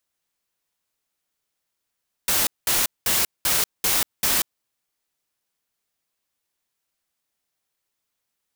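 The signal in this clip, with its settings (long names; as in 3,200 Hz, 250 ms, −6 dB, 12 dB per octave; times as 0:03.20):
noise bursts white, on 0.19 s, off 0.20 s, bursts 6, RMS −20.5 dBFS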